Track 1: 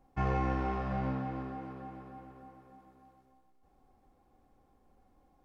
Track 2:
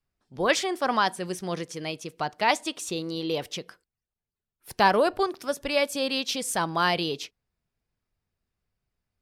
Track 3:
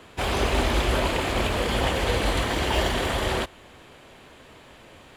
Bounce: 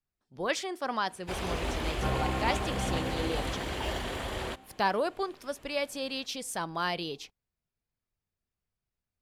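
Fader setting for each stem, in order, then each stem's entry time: -1.0, -7.5, -10.0 dB; 1.85, 0.00, 1.10 s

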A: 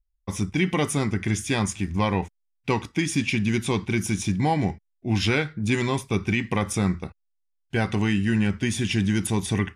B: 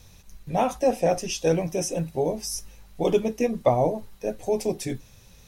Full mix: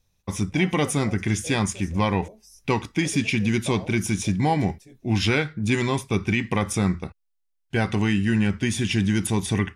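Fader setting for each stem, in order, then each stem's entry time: +1.0, -19.5 dB; 0.00, 0.00 s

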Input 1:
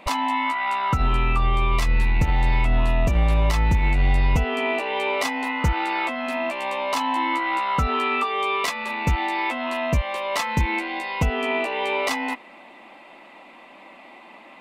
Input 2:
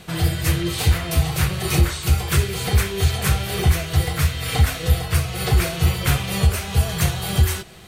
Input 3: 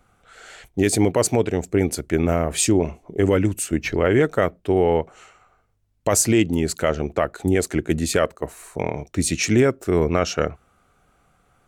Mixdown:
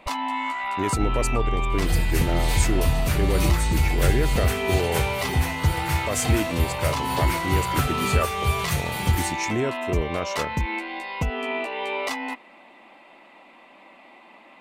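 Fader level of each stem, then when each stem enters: -4.0, -6.0, -8.5 dB; 0.00, 1.70, 0.00 s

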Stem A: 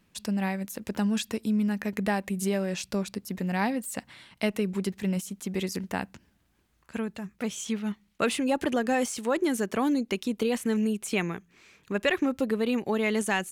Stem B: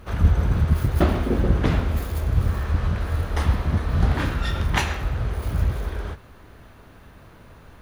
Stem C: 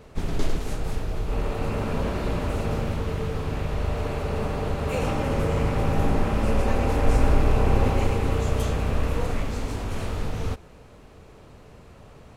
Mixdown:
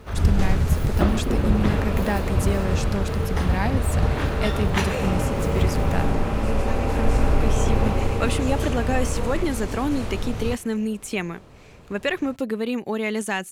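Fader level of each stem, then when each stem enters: +1.0, -2.0, 0.0 dB; 0.00, 0.00, 0.00 s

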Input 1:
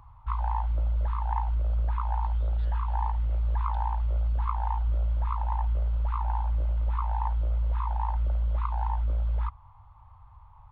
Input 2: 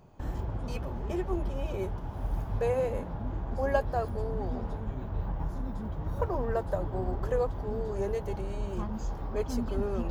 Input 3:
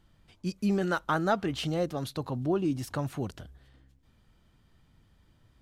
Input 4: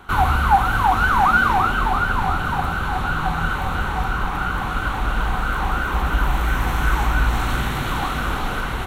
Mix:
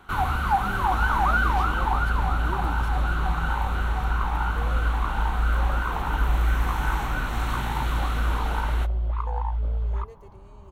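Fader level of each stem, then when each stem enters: +1.0, -14.0, -10.5, -7.0 dB; 0.55, 1.95, 0.00, 0.00 s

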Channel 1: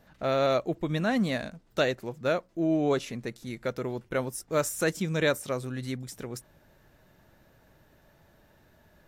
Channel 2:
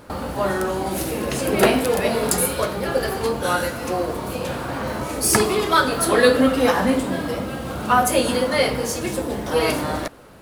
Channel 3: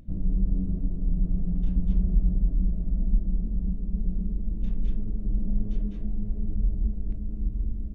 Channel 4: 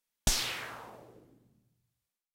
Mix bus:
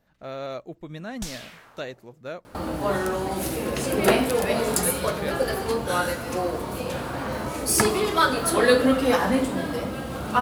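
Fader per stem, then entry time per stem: -8.5 dB, -3.0 dB, off, -7.5 dB; 0.00 s, 2.45 s, off, 0.95 s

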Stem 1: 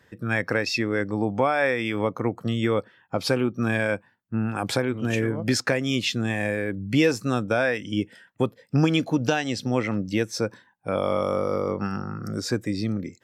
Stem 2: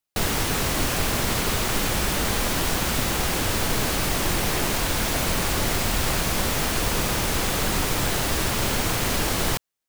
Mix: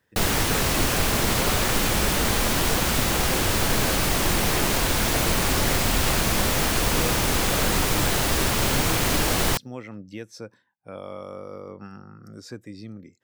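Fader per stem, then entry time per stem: -12.5, +1.5 dB; 0.00, 0.00 s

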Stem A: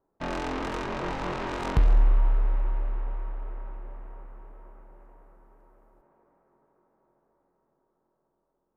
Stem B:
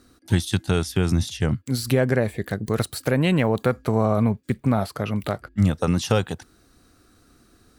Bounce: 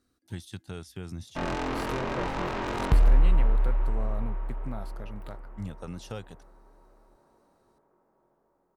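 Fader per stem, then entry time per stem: +0.5, -18.0 dB; 1.15, 0.00 s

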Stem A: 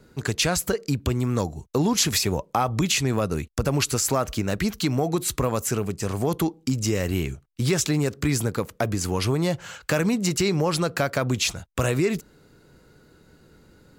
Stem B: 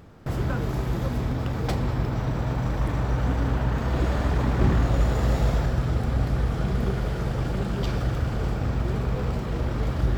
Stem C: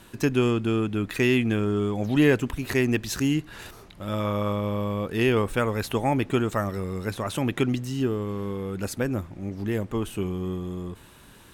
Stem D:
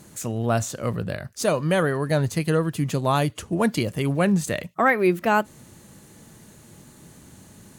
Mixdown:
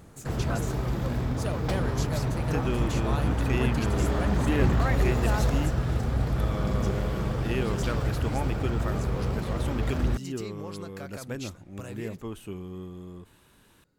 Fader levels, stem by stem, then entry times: -18.5, -2.5, -9.0, -13.0 dB; 0.00, 0.00, 2.30, 0.00 s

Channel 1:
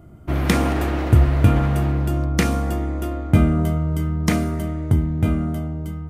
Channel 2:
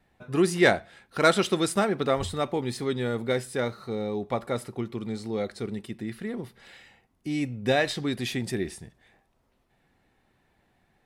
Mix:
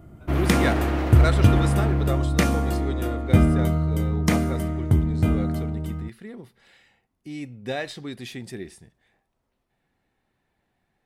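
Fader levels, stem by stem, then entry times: -1.5, -6.0 dB; 0.00, 0.00 s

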